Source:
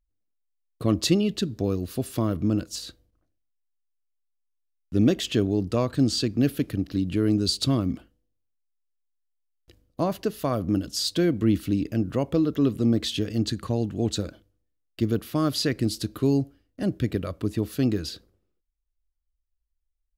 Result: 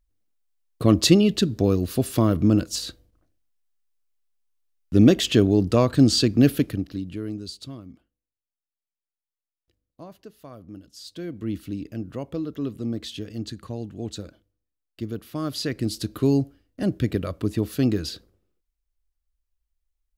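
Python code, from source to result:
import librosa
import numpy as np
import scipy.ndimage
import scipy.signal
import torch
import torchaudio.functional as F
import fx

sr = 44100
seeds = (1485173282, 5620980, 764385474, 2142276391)

y = fx.gain(x, sr, db=fx.line((6.55, 5.5), (7.0, -5.5), (7.85, -17.0), (10.91, -17.0), (11.53, -7.0), (15.17, -7.0), (16.21, 2.0)))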